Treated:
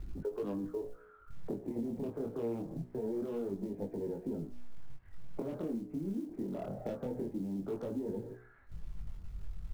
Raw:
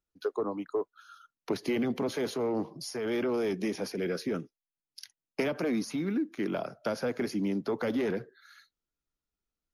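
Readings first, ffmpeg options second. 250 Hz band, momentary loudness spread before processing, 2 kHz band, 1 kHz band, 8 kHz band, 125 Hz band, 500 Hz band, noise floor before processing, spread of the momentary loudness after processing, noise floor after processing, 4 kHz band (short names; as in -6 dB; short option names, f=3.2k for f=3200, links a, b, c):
-6.0 dB, 9 LU, -22.0 dB, -11.0 dB, under -15 dB, -2.0 dB, -7.0 dB, under -85 dBFS, 12 LU, -58 dBFS, under -20 dB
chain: -filter_complex "[0:a]aeval=exprs='val(0)+0.5*0.0141*sgn(val(0))':c=same,aemphasis=mode=reproduction:type=riaa,afwtdn=0.0251,lowpass=f=2k:w=0.5412,lowpass=f=2k:w=1.3066,lowshelf=f=160:g=-6.5,bandreject=f=60.94:t=h:w=4,bandreject=f=121.88:t=h:w=4,bandreject=f=182.82:t=h:w=4,bandreject=f=243.76:t=h:w=4,bandreject=f=304.7:t=h:w=4,bandreject=f=365.64:t=h:w=4,bandreject=f=426.58:t=h:w=4,bandreject=f=487.52:t=h:w=4,bandreject=f=548.46:t=h:w=4,bandreject=f=609.4:t=h:w=4,bandreject=f=670.34:t=h:w=4,bandreject=f=731.28:t=h:w=4,bandreject=f=792.22:t=h:w=4,bandreject=f=853.16:t=h:w=4,bandreject=f=914.1:t=h:w=4,bandreject=f=975.04:t=h:w=4,bandreject=f=1.03598k:t=h:w=4,bandreject=f=1.09692k:t=h:w=4,bandreject=f=1.15786k:t=h:w=4,bandreject=f=1.2188k:t=h:w=4,bandreject=f=1.27974k:t=h:w=4,bandreject=f=1.34068k:t=h:w=4,bandreject=f=1.40162k:t=h:w=4,bandreject=f=1.46256k:t=h:w=4,bandreject=f=1.5235k:t=h:w=4,bandreject=f=1.58444k:t=h:w=4,bandreject=f=1.64538k:t=h:w=4,bandreject=f=1.70632k:t=h:w=4,bandreject=f=1.76726k:t=h:w=4,bandreject=f=1.8282k:t=h:w=4,bandreject=f=1.88914k:t=h:w=4,bandreject=f=1.95008k:t=h:w=4,bandreject=f=2.01102k:t=h:w=4,bandreject=f=2.07196k:t=h:w=4,bandreject=f=2.1329k:t=h:w=4,bandreject=f=2.19384k:t=h:w=4,bandreject=f=2.25478k:t=h:w=4,bandreject=f=2.31572k:t=h:w=4,acrossover=split=820[a][b];[b]aeval=exprs='0.01*(abs(mod(val(0)/0.01+3,4)-2)-1)':c=same[c];[a][c]amix=inputs=2:normalize=0,acrusher=bits=8:mode=log:mix=0:aa=0.000001,acompressor=threshold=-34dB:ratio=6,flanger=delay=19:depth=7.4:speed=0.24,volume=1.5dB"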